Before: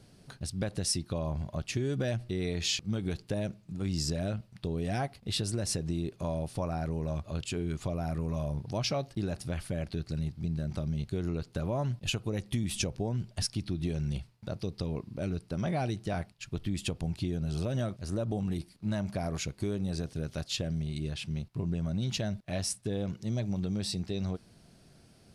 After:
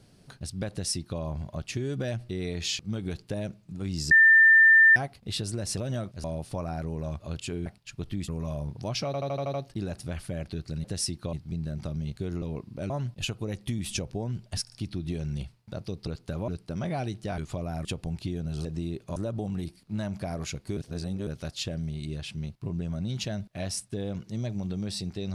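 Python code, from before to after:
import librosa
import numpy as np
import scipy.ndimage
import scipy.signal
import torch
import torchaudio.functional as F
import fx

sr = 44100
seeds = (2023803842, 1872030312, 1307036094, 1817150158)

y = fx.edit(x, sr, fx.duplicate(start_s=0.71, length_s=0.49, to_s=10.25),
    fx.bleep(start_s=4.11, length_s=0.85, hz=1790.0, db=-13.0),
    fx.swap(start_s=5.77, length_s=0.51, other_s=17.62, other_length_s=0.47),
    fx.swap(start_s=7.7, length_s=0.47, other_s=16.2, other_length_s=0.62),
    fx.stutter(start_s=8.95, slice_s=0.08, count=7),
    fx.swap(start_s=11.34, length_s=0.41, other_s=14.82, other_length_s=0.48),
    fx.stutter(start_s=13.47, slice_s=0.05, count=3),
    fx.reverse_span(start_s=19.7, length_s=0.5), tone=tone)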